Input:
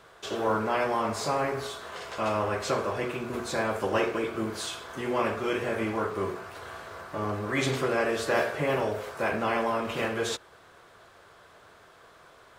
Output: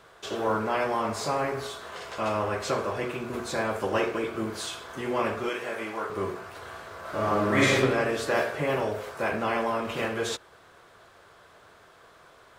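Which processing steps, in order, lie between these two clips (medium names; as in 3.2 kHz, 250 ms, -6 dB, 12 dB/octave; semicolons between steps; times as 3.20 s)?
5.49–6.10 s: high-pass 620 Hz 6 dB/octave; 7.00–7.73 s: reverb throw, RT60 1.1 s, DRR -6.5 dB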